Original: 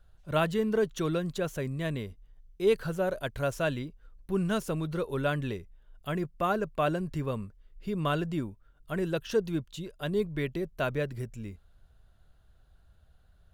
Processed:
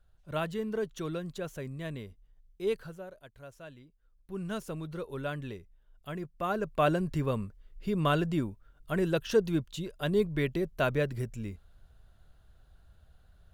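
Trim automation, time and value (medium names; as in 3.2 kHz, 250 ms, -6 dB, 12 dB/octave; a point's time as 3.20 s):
2.71 s -6 dB
3.16 s -18.5 dB
3.85 s -18.5 dB
4.52 s -6.5 dB
6.31 s -6.5 dB
6.83 s +2 dB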